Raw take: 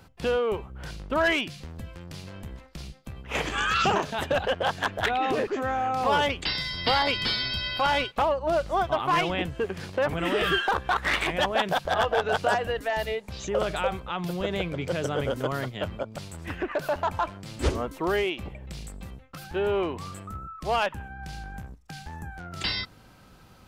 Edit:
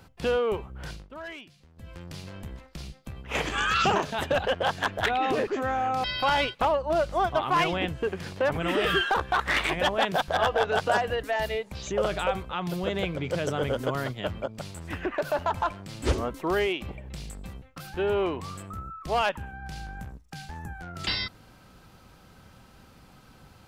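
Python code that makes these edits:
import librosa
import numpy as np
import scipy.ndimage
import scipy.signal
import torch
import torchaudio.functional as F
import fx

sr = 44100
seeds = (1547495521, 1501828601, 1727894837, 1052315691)

y = fx.edit(x, sr, fx.fade_down_up(start_s=0.91, length_s=1.03, db=-16.5, fade_s=0.18),
    fx.cut(start_s=6.04, length_s=1.57), tone=tone)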